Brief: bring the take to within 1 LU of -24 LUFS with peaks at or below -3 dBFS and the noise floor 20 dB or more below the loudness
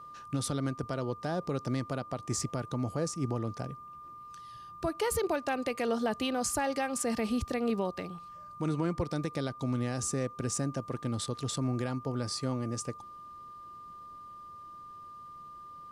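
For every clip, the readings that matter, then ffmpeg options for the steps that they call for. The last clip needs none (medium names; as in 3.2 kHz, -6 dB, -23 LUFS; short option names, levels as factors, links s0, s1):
steady tone 1.2 kHz; tone level -45 dBFS; loudness -33.5 LUFS; peak level -20.5 dBFS; loudness target -24.0 LUFS
-> -af "bandreject=f=1200:w=30"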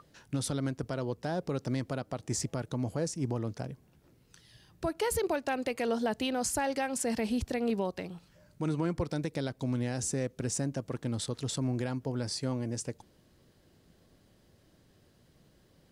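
steady tone not found; loudness -33.5 LUFS; peak level -21.0 dBFS; loudness target -24.0 LUFS
-> -af "volume=2.99"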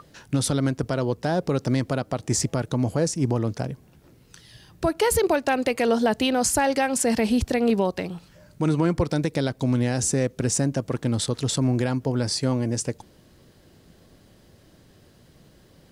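loudness -24.0 LUFS; peak level -11.5 dBFS; noise floor -55 dBFS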